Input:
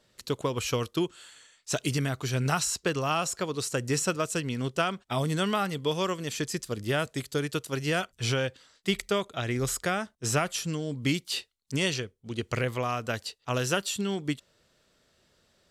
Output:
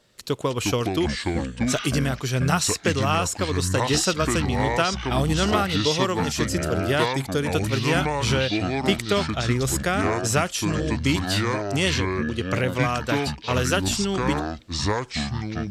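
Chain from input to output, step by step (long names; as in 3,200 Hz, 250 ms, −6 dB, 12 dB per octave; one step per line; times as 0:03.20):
delay with pitch and tempo change per echo 233 ms, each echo −6 semitones, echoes 2
level +4.5 dB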